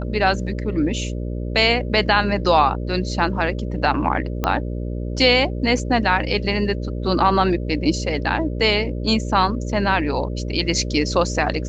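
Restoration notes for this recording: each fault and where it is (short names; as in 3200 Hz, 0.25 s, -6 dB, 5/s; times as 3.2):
buzz 60 Hz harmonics 10 -26 dBFS
4.44 pop -7 dBFS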